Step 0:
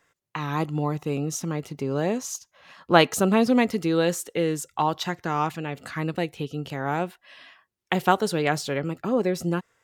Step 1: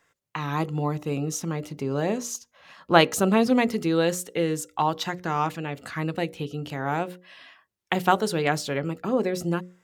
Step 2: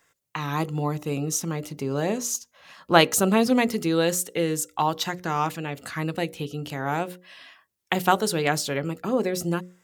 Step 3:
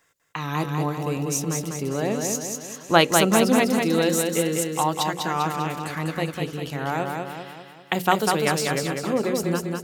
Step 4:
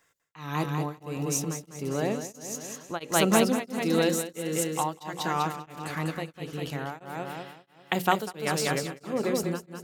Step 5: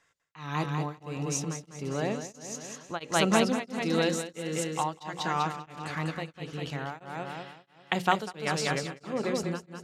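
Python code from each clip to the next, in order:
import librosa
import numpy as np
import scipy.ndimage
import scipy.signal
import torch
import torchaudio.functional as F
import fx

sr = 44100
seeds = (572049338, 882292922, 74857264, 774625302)

y1 = fx.hum_notches(x, sr, base_hz=60, count=10)
y2 = fx.high_shelf(y1, sr, hz=5700.0, db=9.0)
y3 = fx.echo_feedback(y2, sr, ms=198, feedback_pct=50, wet_db=-4)
y4 = y3 * np.abs(np.cos(np.pi * 1.5 * np.arange(len(y3)) / sr))
y4 = y4 * librosa.db_to_amplitude(-2.5)
y5 = scipy.signal.sosfilt(scipy.signal.butter(2, 6600.0, 'lowpass', fs=sr, output='sos'), y4)
y5 = fx.peak_eq(y5, sr, hz=350.0, db=-3.5, octaves=1.7)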